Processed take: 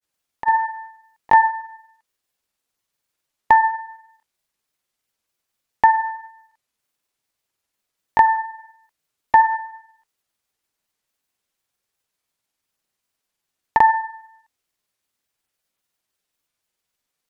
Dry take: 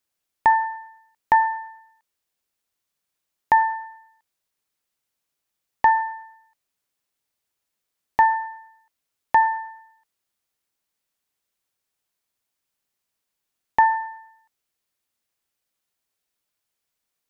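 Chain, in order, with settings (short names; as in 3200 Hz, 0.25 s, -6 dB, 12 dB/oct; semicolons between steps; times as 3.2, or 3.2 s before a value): grains, spray 29 ms, pitch spread up and down by 0 st; gain +4 dB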